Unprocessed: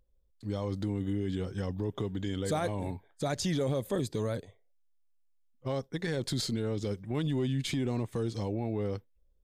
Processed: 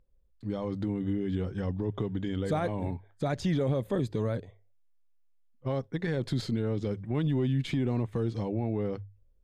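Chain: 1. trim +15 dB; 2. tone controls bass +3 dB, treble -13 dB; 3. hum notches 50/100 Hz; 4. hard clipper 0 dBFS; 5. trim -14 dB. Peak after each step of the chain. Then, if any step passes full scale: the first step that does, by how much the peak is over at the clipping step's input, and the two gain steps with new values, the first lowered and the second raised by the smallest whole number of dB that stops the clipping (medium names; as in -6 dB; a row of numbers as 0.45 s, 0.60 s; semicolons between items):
-7.0 dBFS, -5.5 dBFS, -5.0 dBFS, -5.0 dBFS, -19.0 dBFS; nothing clips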